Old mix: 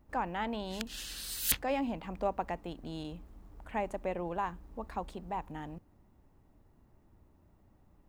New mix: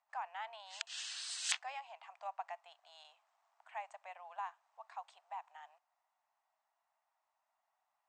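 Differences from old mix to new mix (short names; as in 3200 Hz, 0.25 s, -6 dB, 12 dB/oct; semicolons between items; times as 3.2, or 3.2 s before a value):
speech -7.0 dB; master: add Chebyshev band-pass 680–8300 Hz, order 5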